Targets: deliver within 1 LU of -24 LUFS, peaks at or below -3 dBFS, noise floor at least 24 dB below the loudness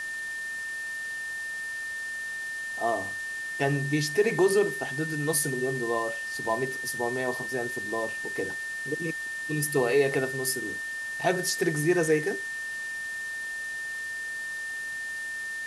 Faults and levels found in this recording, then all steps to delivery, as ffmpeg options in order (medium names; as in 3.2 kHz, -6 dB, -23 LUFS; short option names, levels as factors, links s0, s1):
steady tone 1.8 kHz; tone level -32 dBFS; noise floor -35 dBFS; noise floor target -53 dBFS; loudness -29.0 LUFS; peak level -12.0 dBFS; loudness target -24.0 LUFS
-> -af "bandreject=f=1800:w=30"
-af "afftdn=nr=18:nf=-35"
-af "volume=1.78"